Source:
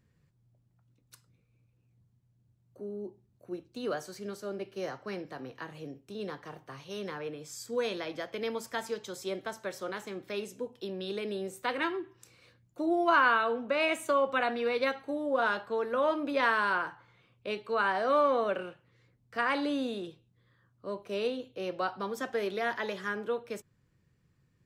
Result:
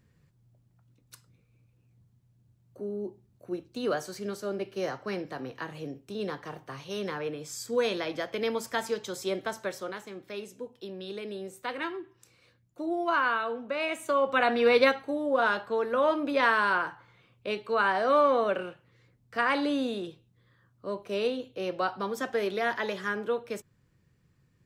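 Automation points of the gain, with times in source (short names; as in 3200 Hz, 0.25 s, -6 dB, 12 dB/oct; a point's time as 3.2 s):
9.62 s +4.5 dB
10.05 s -2.5 dB
13.92 s -2.5 dB
14.76 s +9.5 dB
15.09 s +3 dB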